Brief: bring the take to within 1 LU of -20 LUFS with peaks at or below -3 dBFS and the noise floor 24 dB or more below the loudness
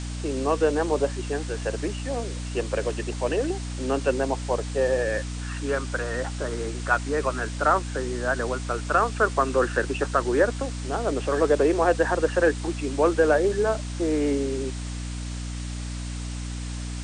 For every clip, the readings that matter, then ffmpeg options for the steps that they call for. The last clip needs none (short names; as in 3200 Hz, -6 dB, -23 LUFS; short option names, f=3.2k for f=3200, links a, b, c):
hum 60 Hz; harmonics up to 300 Hz; hum level -30 dBFS; noise floor -32 dBFS; noise floor target -50 dBFS; loudness -25.5 LUFS; peak -7.5 dBFS; loudness target -20.0 LUFS
-> -af "bandreject=f=60:t=h:w=6,bandreject=f=120:t=h:w=6,bandreject=f=180:t=h:w=6,bandreject=f=240:t=h:w=6,bandreject=f=300:t=h:w=6"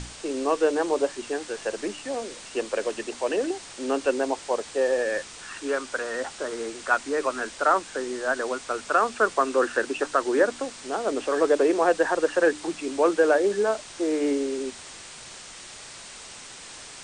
hum none; noise floor -43 dBFS; noise floor target -50 dBFS
-> -af "afftdn=nr=7:nf=-43"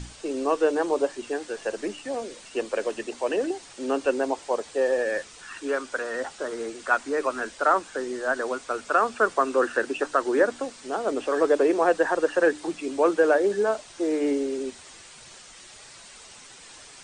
noise floor -47 dBFS; noise floor target -50 dBFS
-> -af "afftdn=nr=6:nf=-47"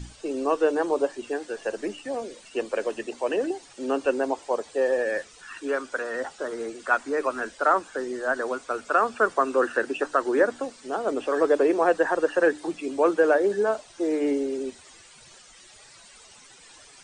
noise floor -51 dBFS; loudness -26.0 LUFS; peak -8.0 dBFS; loudness target -20.0 LUFS
-> -af "volume=6dB,alimiter=limit=-3dB:level=0:latency=1"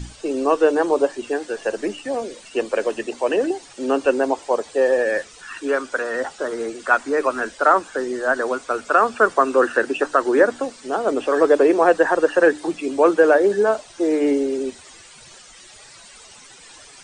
loudness -20.0 LUFS; peak -3.0 dBFS; noise floor -45 dBFS